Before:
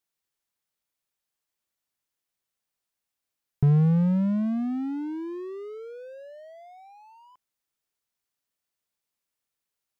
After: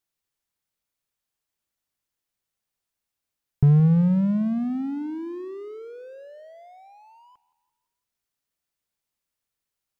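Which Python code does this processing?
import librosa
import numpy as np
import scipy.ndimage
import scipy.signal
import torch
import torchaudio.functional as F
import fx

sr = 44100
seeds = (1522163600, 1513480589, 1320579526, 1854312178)

p1 = fx.low_shelf(x, sr, hz=140.0, db=7.0)
y = p1 + fx.echo_feedback(p1, sr, ms=170, feedback_pct=51, wet_db=-20.0, dry=0)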